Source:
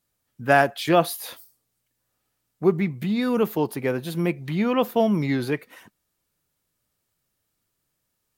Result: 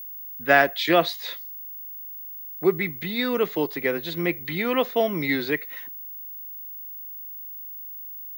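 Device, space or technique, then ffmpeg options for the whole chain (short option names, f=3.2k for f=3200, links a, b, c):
old television with a line whistle: -af "highpass=f=170:w=0.5412,highpass=f=170:w=1.3066,equalizer=f=210:t=q:w=4:g=-10,equalizer=f=870:t=q:w=4:g=-5,equalizer=f=2k:t=q:w=4:g=10,equalizer=f=3.8k:t=q:w=4:g=8,lowpass=f=6.7k:w=0.5412,lowpass=f=6.7k:w=1.3066,aeval=exprs='val(0)+0.0178*sin(2*PI*15625*n/s)':c=same"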